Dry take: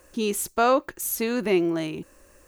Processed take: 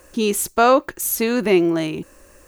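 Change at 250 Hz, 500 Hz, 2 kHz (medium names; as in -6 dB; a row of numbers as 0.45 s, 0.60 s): +6.0 dB, +6.0 dB, +6.0 dB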